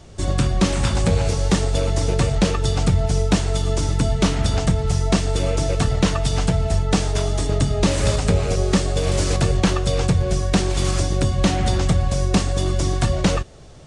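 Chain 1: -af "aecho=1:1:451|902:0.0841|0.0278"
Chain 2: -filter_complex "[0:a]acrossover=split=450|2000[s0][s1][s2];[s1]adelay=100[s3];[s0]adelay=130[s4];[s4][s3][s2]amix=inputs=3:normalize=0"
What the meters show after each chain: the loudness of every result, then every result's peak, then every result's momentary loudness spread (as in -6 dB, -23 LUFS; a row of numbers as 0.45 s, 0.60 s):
-20.5 LUFS, -21.0 LUFS; -7.0 dBFS, -6.5 dBFS; 2 LU, 2 LU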